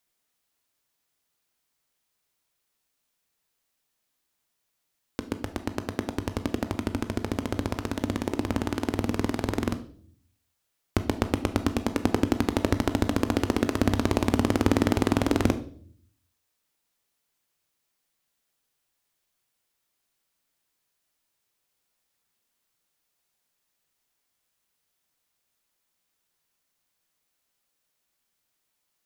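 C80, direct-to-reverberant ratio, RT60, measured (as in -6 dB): 18.5 dB, 9.5 dB, 0.55 s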